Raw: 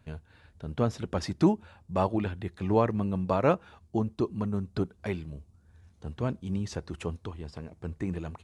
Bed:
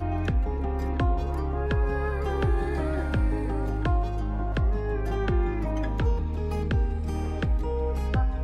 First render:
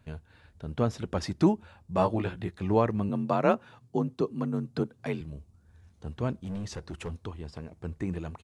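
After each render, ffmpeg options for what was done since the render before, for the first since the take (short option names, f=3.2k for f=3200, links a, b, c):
-filter_complex "[0:a]asplit=3[a][b][c];[a]afade=t=out:st=1.94:d=0.02[d];[b]asplit=2[e][f];[f]adelay=17,volume=-4dB[g];[e][g]amix=inputs=2:normalize=0,afade=t=in:st=1.94:d=0.02,afade=t=out:st=2.5:d=0.02[h];[c]afade=t=in:st=2.5:d=0.02[i];[d][h][i]amix=inputs=3:normalize=0,asettb=1/sr,asplit=3[j][k][l];[j]atrim=end=3.094[m];[k]atrim=start=3.09:end=5.21,asetpts=PTS-STARTPTS,afade=t=in:d=0.004:c=qsin,afade=t=out:st=2.116:d=0.004:c=qsin,afreqshift=40[n];[l]atrim=start=5.206[o];[m][n]acrossfade=d=0.004:c1=hsin:c2=qsin[p];[p][o]acrossfade=d=0.004:c1=qsin:c2=hsin,asettb=1/sr,asplit=3[q][r][s];[q]atrim=end=6.404[t];[r]atrim=start=6.4:end=7.22,asetpts=PTS-STARTPTS,afade=t=in:d=0.004:c=qsin,afade=t=out:st=0.816:d=0.004:c=qsin,volume=31.5dB,asoftclip=hard,volume=-31.5dB[u];[s]atrim=start=7.216[v];[t][u]acrossfade=d=0.004:c1=hsin:c2=qsin[w];[w][v]acrossfade=d=0.004:c1=qsin:c2=hsin"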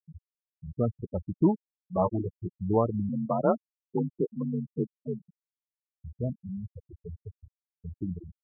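-af "afftfilt=real='re*gte(hypot(re,im),0.126)':imag='im*gte(hypot(re,im),0.126)':win_size=1024:overlap=0.75,lowpass=1.4k"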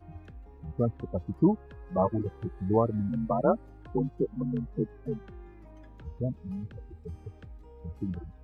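-filter_complex "[1:a]volume=-22.5dB[a];[0:a][a]amix=inputs=2:normalize=0"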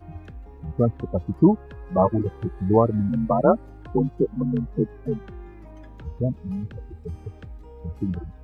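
-af "volume=7dB"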